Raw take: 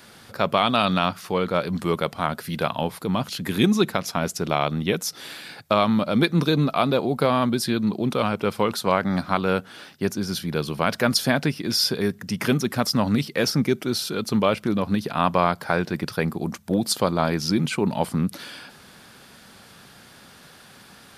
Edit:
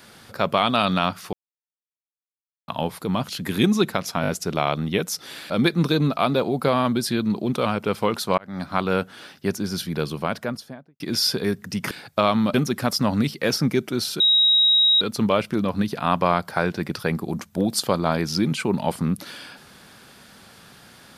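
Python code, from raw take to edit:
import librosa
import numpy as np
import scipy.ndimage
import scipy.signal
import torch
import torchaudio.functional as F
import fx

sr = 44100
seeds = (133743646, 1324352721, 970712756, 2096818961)

y = fx.studio_fade_out(x, sr, start_s=10.51, length_s=1.06)
y = fx.edit(y, sr, fx.silence(start_s=1.33, length_s=1.35),
    fx.stutter(start_s=4.22, slice_s=0.02, count=4),
    fx.move(start_s=5.44, length_s=0.63, to_s=12.48),
    fx.fade_in_span(start_s=8.95, length_s=0.43),
    fx.insert_tone(at_s=14.14, length_s=0.81, hz=3810.0, db=-13.5), tone=tone)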